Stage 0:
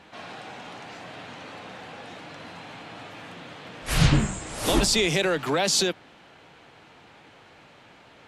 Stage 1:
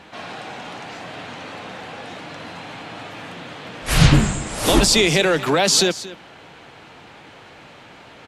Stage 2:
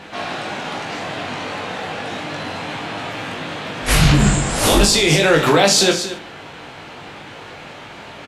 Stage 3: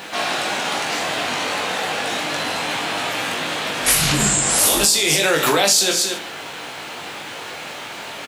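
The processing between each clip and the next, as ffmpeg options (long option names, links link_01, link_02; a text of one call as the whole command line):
ffmpeg -i in.wav -af "aecho=1:1:228:0.15,areverse,acompressor=mode=upward:threshold=-45dB:ratio=2.5,areverse,volume=6.5dB" out.wav
ffmpeg -i in.wav -filter_complex "[0:a]alimiter=limit=-12.5dB:level=0:latency=1:release=39,asplit=2[link_01][link_02];[link_02]aecho=0:1:20|44|72.8|107.4|148.8:0.631|0.398|0.251|0.158|0.1[link_03];[link_01][link_03]amix=inputs=2:normalize=0,volume=5.5dB" out.wav
ffmpeg -i in.wav -af "aemphasis=mode=production:type=bsi,acompressor=threshold=-18dB:ratio=4,volume=3.5dB" out.wav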